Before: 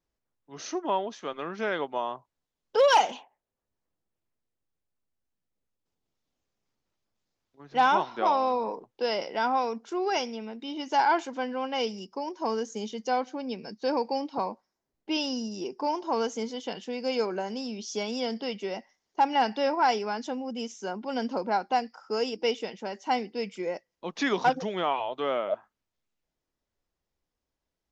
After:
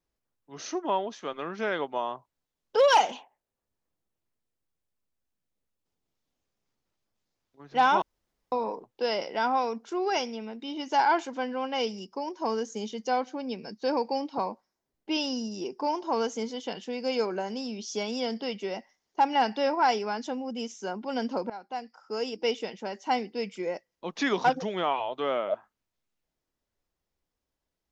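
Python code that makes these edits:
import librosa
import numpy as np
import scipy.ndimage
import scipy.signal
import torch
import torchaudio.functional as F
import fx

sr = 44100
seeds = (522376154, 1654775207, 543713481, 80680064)

y = fx.edit(x, sr, fx.room_tone_fill(start_s=8.02, length_s=0.5),
    fx.fade_in_from(start_s=21.5, length_s=1.06, floor_db=-17.5), tone=tone)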